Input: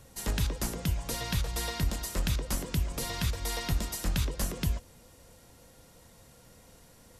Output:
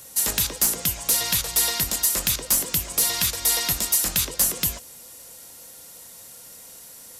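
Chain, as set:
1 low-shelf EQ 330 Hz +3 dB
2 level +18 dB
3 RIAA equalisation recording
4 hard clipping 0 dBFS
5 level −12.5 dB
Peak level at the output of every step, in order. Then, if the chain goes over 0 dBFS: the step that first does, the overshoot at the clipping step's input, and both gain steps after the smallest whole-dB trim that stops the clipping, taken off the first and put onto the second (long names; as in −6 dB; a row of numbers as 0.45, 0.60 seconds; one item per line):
−15.5, +2.5, +9.5, 0.0, −12.5 dBFS
step 2, 9.5 dB
step 2 +8 dB, step 5 −2.5 dB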